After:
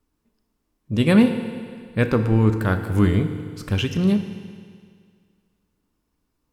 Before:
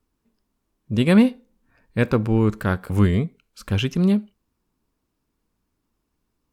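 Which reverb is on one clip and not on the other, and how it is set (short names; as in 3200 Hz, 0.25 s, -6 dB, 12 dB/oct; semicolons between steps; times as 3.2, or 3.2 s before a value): FDN reverb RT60 2 s, low-frequency decay 0.95×, high-frequency decay 1×, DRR 7 dB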